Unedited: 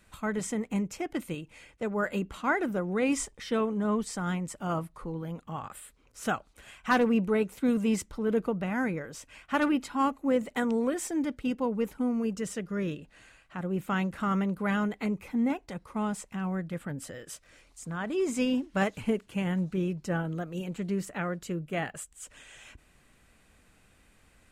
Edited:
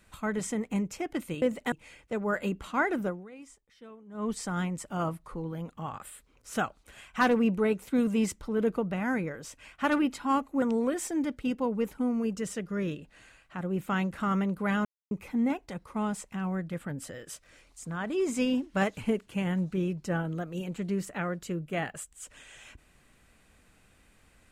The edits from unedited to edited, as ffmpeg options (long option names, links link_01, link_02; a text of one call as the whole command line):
ffmpeg -i in.wav -filter_complex "[0:a]asplit=8[link_01][link_02][link_03][link_04][link_05][link_06][link_07][link_08];[link_01]atrim=end=1.422[link_09];[link_02]atrim=start=10.318:end=10.622[link_10];[link_03]atrim=start=1.418:end=3.01,asetpts=PTS-STARTPTS,afade=type=out:start_time=1.352:duration=0.24:curve=qua:silence=0.0891251[link_11];[link_04]atrim=start=3.01:end=3.76,asetpts=PTS-STARTPTS,volume=-21dB[link_12];[link_05]atrim=start=3.76:end=10.322,asetpts=PTS-STARTPTS,afade=type=in:duration=0.24:curve=qua:silence=0.0891251[link_13];[link_06]atrim=start=10.618:end=14.85,asetpts=PTS-STARTPTS,afade=type=out:start_time=4.228:duration=0.004:curve=hsin[link_14];[link_07]atrim=start=14.85:end=15.11,asetpts=PTS-STARTPTS,volume=0[link_15];[link_08]atrim=start=15.11,asetpts=PTS-STARTPTS,afade=type=in:duration=0.004:curve=hsin[link_16];[link_09][link_10]acrossfade=duration=0.004:curve1=hsin:curve2=hsin[link_17];[link_11][link_12][link_13]concat=n=3:v=0:a=1[link_18];[link_17][link_18]acrossfade=duration=0.004:curve1=hsin:curve2=hsin[link_19];[link_14][link_15][link_16]concat=n=3:v=0:a=1[link_20];[link_19][link_20]acrossfade=duration=0.004:curve1=hsin:curve2=hsin" out.wav